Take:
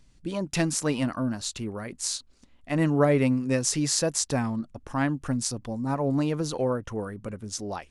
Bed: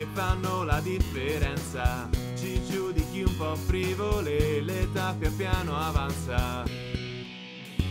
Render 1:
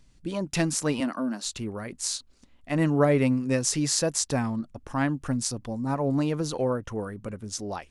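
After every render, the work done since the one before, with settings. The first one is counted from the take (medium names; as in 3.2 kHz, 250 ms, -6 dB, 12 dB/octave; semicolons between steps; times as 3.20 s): 1.00–1.45 s: steep high-pass 190 Hz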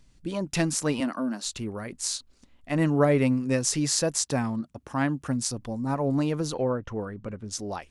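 4.24–5.48 s: high-pass 80 Hz; 6.54–7.51 s: distance through air 110 m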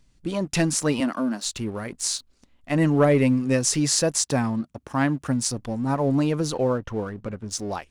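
waveshaping leveller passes 1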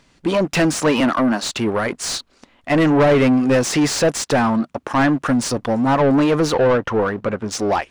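overdrive pedal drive 26 dB, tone 1.8 kHz, clips at -6.5 dBFS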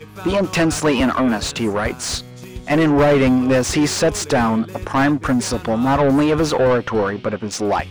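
add bed -4 dB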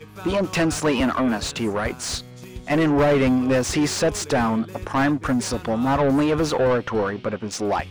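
trim -4 dB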